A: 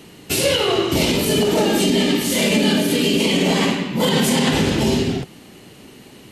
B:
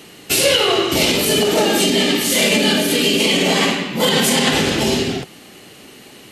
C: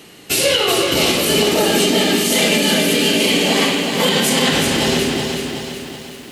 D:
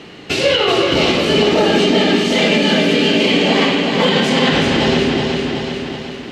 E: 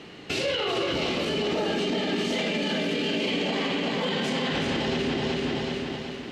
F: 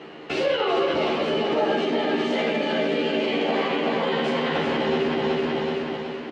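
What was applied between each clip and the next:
bass shelf 320 Hz -10 dB; band-stop 950 Hz, Q 12; trim +5 dB
bit-crushed delay 374 ms, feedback 55%, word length 7-bit, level -5 dB; trim -1 dB
in parallel at +0.5 dB: compression, threshold -24 dBFS, peak gain reduction 12 dB; on the sum: distance through air 170 m; trim +1 dB
peak limiter -11 dBFS, peak gain reduction 9 dB; trim -7.5 dB
band-pass filter 740 Hz, Q 0.62; doubling 13 ms -2 dB; trim +5 dB

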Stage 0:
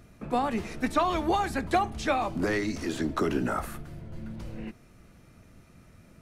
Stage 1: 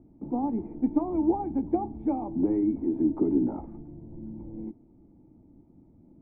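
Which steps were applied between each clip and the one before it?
cascade formant filter u; trim +9 dB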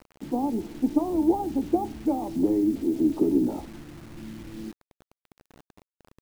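dynamic bell 490 Hz, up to +5 dB, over -38 dBFS, Q 1.2; bit crusher 8-bit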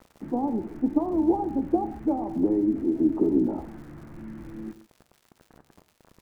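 low-pass 1.9 kHz 24 dB/octave; crackle 170 per s -46 dBFS; gated-style reverb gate 170 ms flat, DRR 11.5 dB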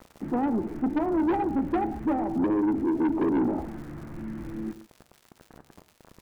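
saturation -24.5 dBFS, distortion -9 dB; trim +4 dB

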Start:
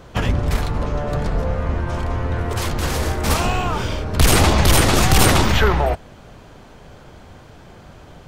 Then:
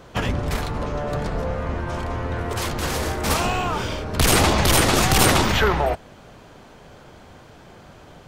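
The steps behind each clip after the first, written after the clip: bass shelf 110 Hz -7.5 dB; trim -1 dB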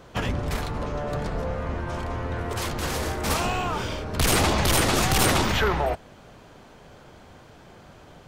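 saturation -8.5 dBFS, distortion -22 dB; trim -3 dB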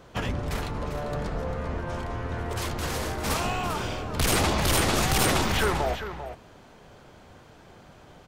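delay 396 ms -10 dB; trim -2.5 dB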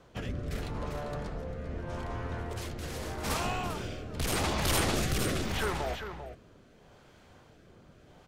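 rotary cabinet horn 0.8 Hz; trim -4 dB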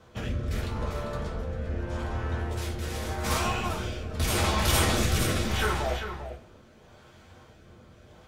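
reverberation, pre-delay 3 ms, DRR -2 dB

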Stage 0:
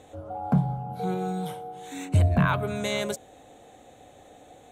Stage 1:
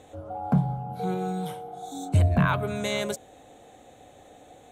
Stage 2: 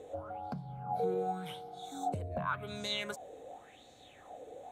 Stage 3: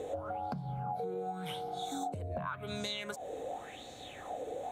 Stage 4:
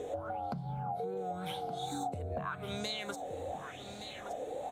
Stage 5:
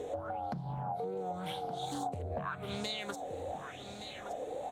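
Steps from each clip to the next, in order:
spectral replace 1.69–2.11 s, 670–3300 Hz before
compression 12:1, threshold -30 dBFS, peak gain reduction 14 dB; sweeping bell 0.89 Hz 440–4800 Hz +17 dB; trim -8 dB
compression 12:1, threshold -44 dBFS, peak gain reduction 15.5 dB; trim +9.5 dB
wow and flutter 60 cents; delay 1170 ms -10 dB
loudspeaker Doppler distortion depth 0.26 ms

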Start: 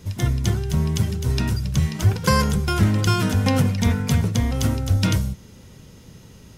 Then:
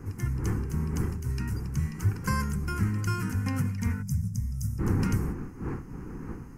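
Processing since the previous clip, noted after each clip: wind noise 350 Hz -26 dBFS; static phaser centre 1.5 kHz, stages 4; time-frequency box 4.02–4.79 s, 220–4800 Hz -20 dB; trim -8.5 dB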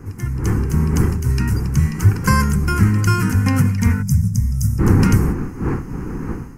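level rider gain up to 7.5 dB; trim +5.5 dB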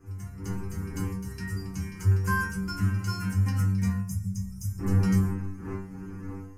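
inharmonic resonator 95 Hz, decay 0.69 s, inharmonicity 0.002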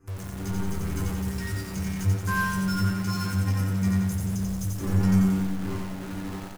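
in parallel at -8 dB: companded quantiser 2-bit; on the sum: feedback delay 89 ms, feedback 55%, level -3 dB; trim -3 dB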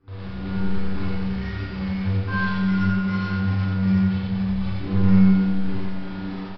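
careless resampling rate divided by 6×, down none, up hold; Schroeder reverb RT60 0.4 s, combs from 31 ms, DRR -5 dB; resampled via 11.025 kHz; trim -4.5 dB

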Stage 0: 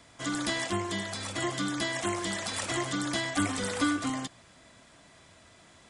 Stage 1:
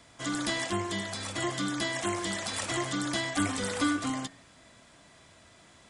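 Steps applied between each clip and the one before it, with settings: de-hum 91.63 Hz, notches 29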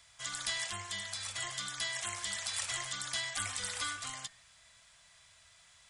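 amplifier tone stack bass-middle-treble 10-0-10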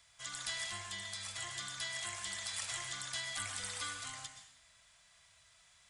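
plate-style reverb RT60 0.67 s, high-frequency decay 1×, pre-delay 105 ms, DRR 6 dB; trim -4.5 dB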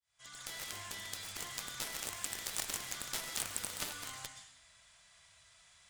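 fade-in on the opening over 0.82 s; Chebyshev shaper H 7 -13 dB, 8 -28 dB, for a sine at -23 dBFS; trim +7 dB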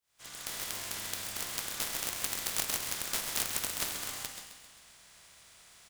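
spectral contrast reduction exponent 0.38; feedback delay 132 ms, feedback 52%, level -9.5 dB; trim +5.5 dB

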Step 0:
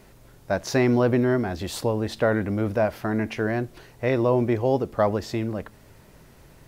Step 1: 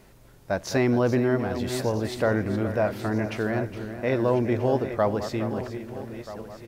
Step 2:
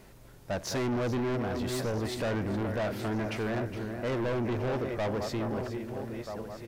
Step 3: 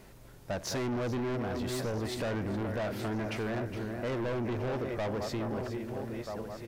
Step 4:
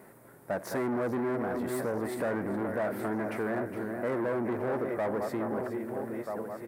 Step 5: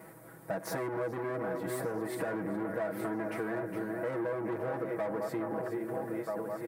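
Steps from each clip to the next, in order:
backward echo that repeats 642 ms, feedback 56%, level -11 dB; delay 415 ms -12 dB; trim -2 dB
saturation -27.5 dBFS, distortion -7 dB
compression, threshold -31 dBFS, peak gain reduction 3 dB
high-pass 200 Hz 12 dB/octave; high-order bell 4.2 kHz -14.5 dB; trim +3.5 dB
comb 6.2 ms, depth 95%; compression 3:1, threshold -33 dBFS, peak gain reduction 8.5 dB

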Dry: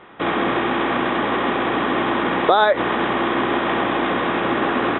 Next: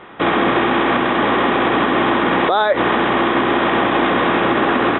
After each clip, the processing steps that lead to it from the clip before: peak limiter -12 dBFS, peak gain reduction 9 dB; trim +5.5 dB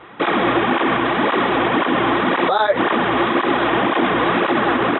cancelling through-zero flanger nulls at 1.9 Hz, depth 5.6 ms; trim +1.5 dB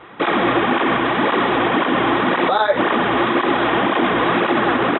delay 89 ms -12.5 dB

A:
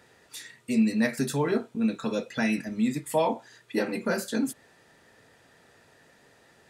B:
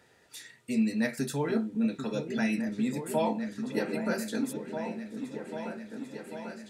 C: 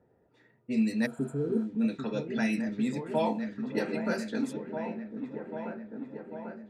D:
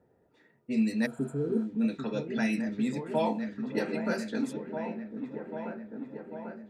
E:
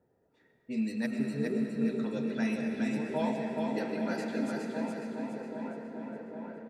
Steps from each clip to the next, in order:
band-stop 1.1 kHz, Q 9.8; delay with an opening low-pass 794 ms, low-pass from 400 Hz, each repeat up 2 oct, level -6 dB; trim -4 dB
spectral replace 1.08–1.58 s, 550–6800 Hz after; level-controlled noise filter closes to 590 Hz, open at -24 dBFS
hum notches 60/120 Hz
feedback delay 415 ms, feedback 42%, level -4 dB; on a send at -5 dB: reverberation RT60 3.3 s, pre-delay 70 ms; on the sum: trim -5 dB

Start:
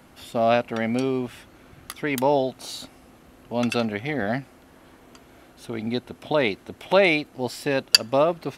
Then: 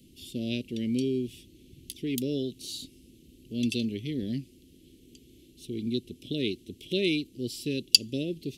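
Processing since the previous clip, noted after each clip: elliptic band-stop 370–3000 Hz, stop band 70 dB; trim -2 dB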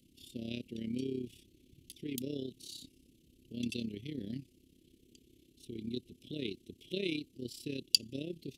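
AM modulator 33 Hz, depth 55%; trim -6 dB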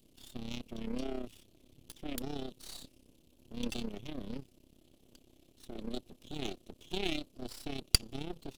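half-wave rectifier; trim +4.5 dB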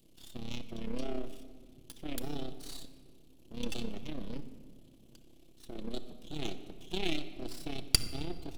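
simulated room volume 2400 m³, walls mixed, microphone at 0.71 m

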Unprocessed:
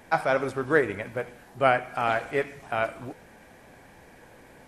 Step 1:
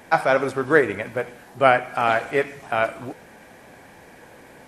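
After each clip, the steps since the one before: bass shelf 72 Hz -11 dB; trim +5.5 dB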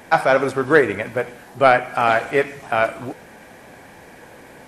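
saturation -3.5 dBFS, distortion -22 dB; trim +3.5 dB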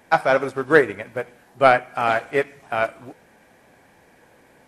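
upward expansion 1.5:1, over -31 dBFS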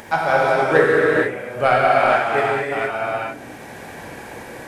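upward compressor, threshold -24 dBFS; gated-style reverb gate 500 ms flat, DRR -6.5 dB; trim -4 dB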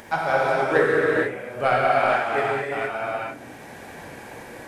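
flange 1.3 Hz, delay 2.7 ms, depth 6.9 ms, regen -69%

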